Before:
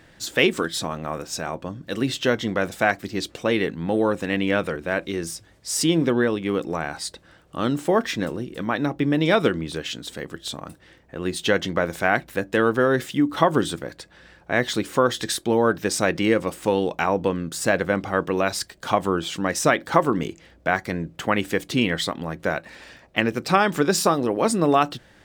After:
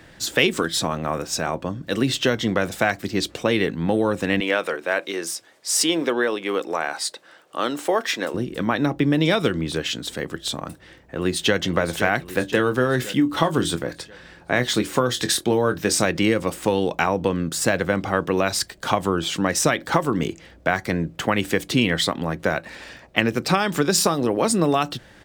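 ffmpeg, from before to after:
-filter_complex "[0:a]asettb=1/sr,asplit=3[s0][s1][s2];[s0]atrim=end=4.404[s3];[s1]atrim=start=4.4:end=8.34,asetpts=PTS-STARTPTS,afade=t=in:d=0.004:c=qsin,afade=t=out:st=3.936:d=0.004:c=qsin,highpass=440[s4];[s2]atrim=start=8.336[s5];[s3][s4]acrossfade=d=0.004:c1=hsin:c2=qsin[s6];[s6][s5]acrossfade=d=0.004:c1=qsin:c2=hsin,asplit=2[s7][s8];[s8]afade=t=in:st=10.66:d=0.01,afade=t=out:st=11.57:d=0.01,aecho=0:1:520|1040|1560|2080|2600|3120:0.281838|0.155011|0.0852561|0.0468908|0.02579|0.0141845[s9];[s7][s9]amix=inputs=2:normalize=0,asettb=1/sr,asplit=3[s10][s11][s12];[s10]atrim=end=12.294[s13];[s11]atrim=start=12.29:end=16.05,asetpts=PTS-STARTPTS,afade=t=in:d=0.004:c=qsin,afade=t=out:st=3.756:d=0.004:c=qsin,asplit=2[s14][s15];[s15]adelay=24,volume=0.299[s16];[s14][s16]amix=inputs=2:normalize=0,atrim=end_sample=165816[s17];[s12]atrim=start=16.046[s18];[s13][s17]acrossfade=d=0.004:c1=hsin:c2=qsin[s19];[s19][s18]acrossfade=d=0.004:c1=qsin:c2=hsin,acrossover=split=140|3000[s20][s21][s22];[s21]acompressor=threshold=0.0891:ratio=6[s23];[s20][s23][s22]amix=inputs=3:normalize=0,volume=1.68"

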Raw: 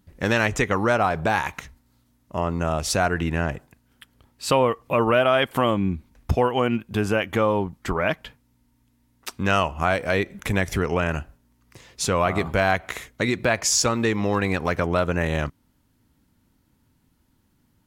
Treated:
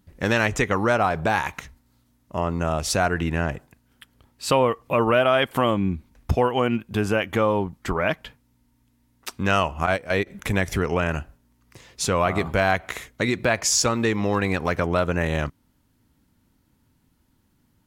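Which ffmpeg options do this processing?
-filter_complex "[0:a]asettb=1/sr,asplit=3[s0][s1][s2];[s0]atrim=end=9.864[s3];[s1]atrim=start=9.86:end=10.27,asetpts=PTS-STARTPTS,afade=t=in:d=0.004:c=qsin,afade=t=out:st=0.406:d=0.004:c=qsin,agate=range=0.316:threshold=0.0708:ratio=16:release=100:detection=peak[s4];[s2]atrim=start=10.266[s5];[s3][s4]acrossfade=d=0.004:c1=hsin:c2=qsin[s6];[s6][s5]acrossfade=d=0.004:c1=qsin:c2=hsin"

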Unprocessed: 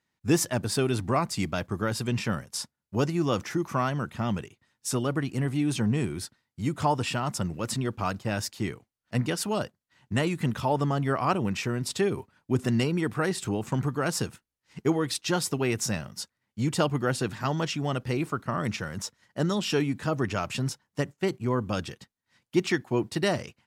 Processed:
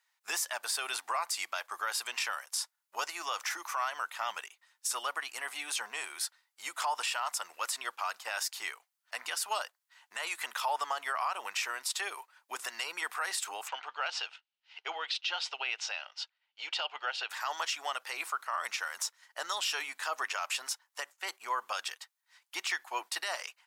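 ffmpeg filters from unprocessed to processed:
-filter_complex "[0:a]asplit=3[s0][s1][s2];[s0]afade=t=out:st=13.67:d=0.02[s3];[s1]highpass=460,equalizer=f=1100:t=q:w=4:g=-9,equalizer=f=1800:t=q:w=4:g=-6,equalizer=f=2900:t=q:w=4:g=7,lowpass=f=4300:w=0.5412,lowpass=f=4300:w=1.3066,afade=t=in:st=13.67:d=0.02,afade=t=out:st=17.29:d=0.02[s4];[s2]afade=t=in:st=17.29:d=0.02[s5];[s3][s4][s5]amix=inputs=3:normalize=0,highpass=f=830:w=0.5412,highpass=f=830:w=1.3066,highshelf=f=9800:g=6,alimiter=level_in=1.26:limit=0.0631:level=0:latency=1:release=83,volume=0.794,volume=1.5"

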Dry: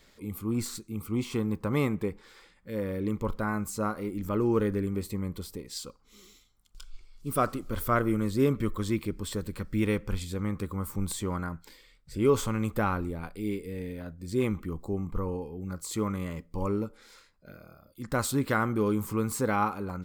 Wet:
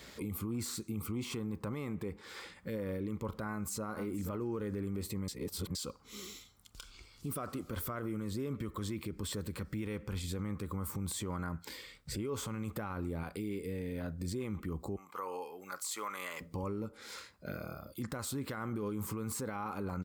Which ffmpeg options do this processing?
-filter_complex "[0:a]asplit=2[s0][s1];[s1]afade=t=in:st=3.48:d=0.01,afade=t=out:st=3.9:d=0.01,aecho=0:1:480|960:0.199526|0.0299289[s2];[s0][s2]amix=inputs=2:normalize=0,asettb=1/sr,asplit=3[s3][s4][s5];[s3]atrim=end=14.964[s6];[s4]atrim=start=14.96:end=16.41,asetpts=PTS-STARTPTS,afade=t=in:d=0.004:c=qsin,afade=t=out:st=1.446:d=0.004:c=qsin,highpass=960[s7];[s5]atrim=start=16.406[s8];[s6][s7]acrossfade=d=0.004:c1=hsin:c2=qsin[s9];[s9][s8]acrossfade=d=0.004:c1=qsin:c2=hsin,asplit=3[s10][s11][s12];[s10]atrim=end=5.282[s13];[s11]atrim=start=5.278:end=5.752,asetpts=PTS-STARTPTS,areverse[s14];[s12]atrim=start=5.748[s15];[s13][s14]acrossfade=d=0.004:c1=hsin:c2=hsin[s16];[s16][s15]acrossfade=d=0.004:c1=hsin:c2=hsin,highpass=f=51:w=0.5412,highpass=f=51:w=1.3066,acompressor=threshold=0.00631:ratio=2.5,alimiter=level_in=5.31:limit=0.0631:level=0:latency=1:release=38,volume=0.188,volume=2.66"

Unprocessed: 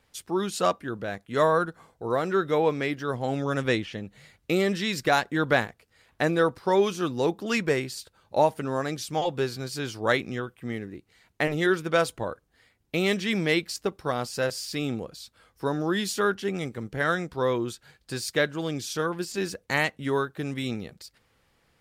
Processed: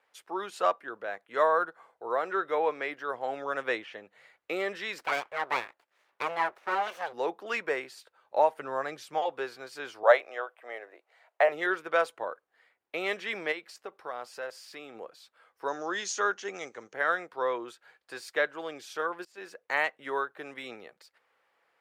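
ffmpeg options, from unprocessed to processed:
-filter_complex "[0:a]asplit=3[s0][s1][s2];[s0]afade=t=out:st=4.98:d=0.02[s3];[s1]aeval=exprs='abs(val(0))':c=same,afade=t=in:st=4.98:d=0.02,afade=t=out:st=7.12:d=0.02[s4];[s2]afade=t=in:st=7.12:d=0.02[s5];[s3][s4][s5]amix=inputs=3:normalize=0,asettb=1/sr,asplit=3[s6][s7][s8];[s6]atrim=end=8.594[s9];[s7]atrim=start=8.59:end=9.18,asetpts=PTS-STARTPTS,afade=t=in:d=0.004:c=qsin,afade=t=out:st=0.586:d=0.004:c=qsin,equalizer=f=140:w=1.5:g=7.5[s10];[s8]atrim=start=9.176[s11];[s9][s10]acrossfade=d=0.004:c1=hsin:c2=qsin[s12];[s12][s11]acrossfade=d=0.004:c1=qsin:c2=hsin,asettb=1/sr,asplit=3[s13][s14][s15];[s13]atrim=end=10.034[s16];[s14]atrim=start=10.03:end=11.49,asetpts=PTS-STARTPTS,afade=t=in:d=0.004:c=qsin,afade=t=out:st=1.456:d=0.004:c=qsin,highpass=f=620:t=q:w=3.8[s17];[s15]atrim=start=11.486[s18];[s16][s17]acrossfade=d=0.004:c1=hsin:c2=qsin[s19];[s19][s18]acrossfade=d=0.004:c1=qsin:c2=hsin,asplit=3[s20][s21][s22];[s20]afade=t=out:st=13.51:d=0.02[s23];[s21]acompressor=threshold=0.02:ratio=2:attack=3.2:release=140:knee=1:detection=peak,afade=t=in:st=13.51:d=0.02,afade=t=out:st=14.94:d=0.02[s24];[s22]afade=t=in:st=14.94:d=0.02[s25];[s23][s24][s25]amix=inputs=3:normalize=0,asettb=1/sr,asplit=3[s26][s27][s28];[s26]atrim=end=15.684[s29];[s27]atrim=start=15.68:end=16.94,asetpts=PTS-STARTPTS,afade=t=in:d=0.004:c=qsin,afade=t=out:st=1.256:d=0.004:c=qsin,lowpass=f=6400:t=q:w=11[s30];[s28]atrim=start=16.936[s31];[s29][s30]acrossfade=d=0.004:c1=hsin:c2=qsin[s32];[s32][s31]acrossfade=d=0.004:c1=qsin:c2=hsin,asplit=2[s33][s34];[s33]atrim=end=19.25,asetpts=PTS-STARTPTS,afade=t=out:st=19.246:d=0.004:c=hsin:silence=0.112202[s35];[s34]atrim=start=19.25,asetpts=PTS-STARTPTS,afade=t=in:d=0.62:c=qsin:silence=0.112202[s36];[s35][s36]concat=n=2:v=0:a=1,highpass=f=270:p=1,acrossover=split=430 2500:gain=0.0794 1 0.2[s37][s38][s39];[s37][s38][s39]amix=inputs=3:normalize=0"

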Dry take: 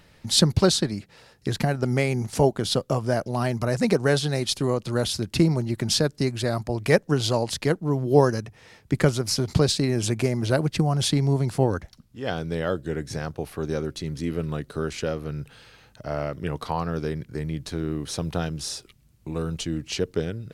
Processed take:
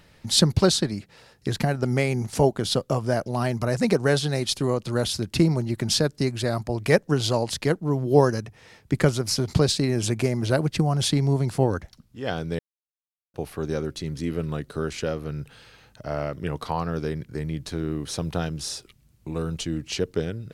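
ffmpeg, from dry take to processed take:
-filter_complex "[0:a]asplit=3[s0][s1][s2];[s0]atrim=end=12.59,asetpts=PTS-STARTPTS,afade=t=out:st=12.586:d=0.004:c=hsin[s3];[s1]atrim=start=12.59:end=13.34,asetpts=PTS-STARTPTS,volume=0[s4];[s2]atrim=start=13.34,asetpts=PTS-STARTPTS,afade=t=in:d=0.004:c=hsin[s5];[s3][s4][s5]concat=n=3:v=0:a=1"

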